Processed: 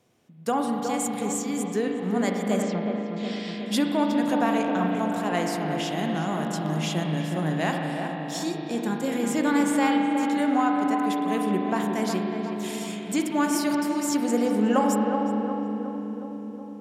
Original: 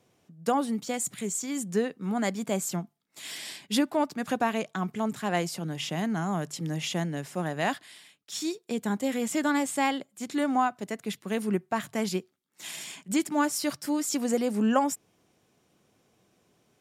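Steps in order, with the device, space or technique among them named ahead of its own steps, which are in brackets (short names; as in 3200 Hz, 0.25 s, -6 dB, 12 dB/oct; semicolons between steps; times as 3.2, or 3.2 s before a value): dub delay into a spring reverb (darkening echo 0.366 s, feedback 70%, low-pass 1300 Hz, level -5 dB; spring tank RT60 3.5 s, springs 38 ms, chirp 25 ms, DRR 2 dB); 2.62–3.66 LPF 5100 Hz 24 dB/oct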